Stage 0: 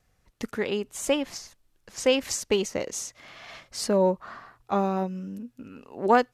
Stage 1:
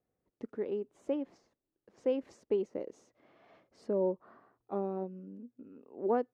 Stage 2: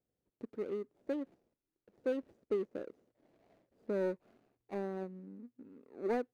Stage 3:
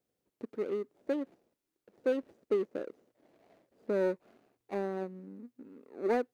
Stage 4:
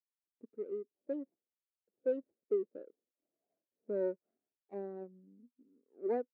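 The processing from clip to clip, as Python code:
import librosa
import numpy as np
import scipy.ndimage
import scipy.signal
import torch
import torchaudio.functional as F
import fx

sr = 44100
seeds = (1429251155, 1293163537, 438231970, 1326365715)

y1 = fx.bandpass_q(x, sr, hz=360.0, q=1.5)
y1 = F.gain(torch.from_numpy(y1), -5.0).numpy()
y2 = scipy.signal.medfilt(y1, 41)
y2 = F.gain(torch.from_numpy(y2), -2.5).numpy()
y3 = fx.low_shelf(y2, sr, hz=130.0, db=-11.5)
y3 = F.gain(torch.from_numpy(y3), 5.5).numpy()
y4 = fx.spectral_expand(y3, sr, expansion=1.5)
y4 = F.gain(torch.from_numpy(y4), -4.5).numpy()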